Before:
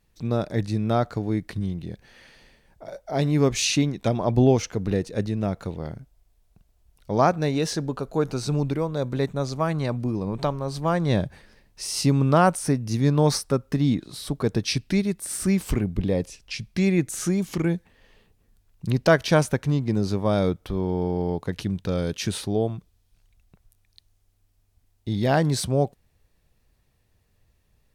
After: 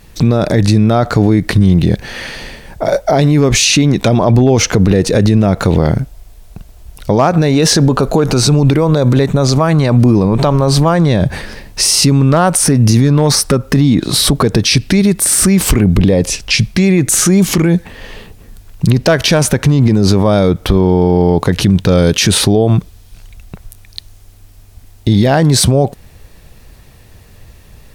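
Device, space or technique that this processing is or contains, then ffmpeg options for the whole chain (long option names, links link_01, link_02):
loud club master: -af "acompressor=threshold=-25dB:ratio=2,asoftclip=type=hard:threshold=-16dB,alimiter=level_in=27dB:limit=-1dB:release=50:level=0:latency=1,volume=-1dB"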